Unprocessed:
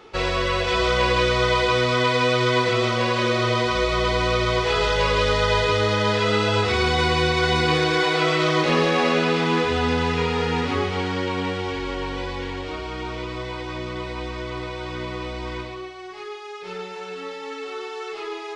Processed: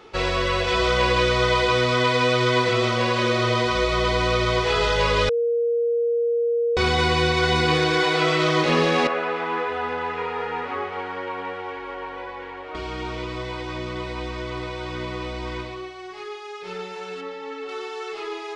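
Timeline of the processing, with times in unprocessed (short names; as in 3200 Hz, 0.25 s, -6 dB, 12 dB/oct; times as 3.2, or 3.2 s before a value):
5.29–6.77 bleep 470 Hz -18.5 dBFS
9.07–12.75 three-band isolator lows -19 dB, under 440 Hz, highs -19 dB, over 2200 Hz
17.21–17.69 LPF 2400 Hz 6 dB/oct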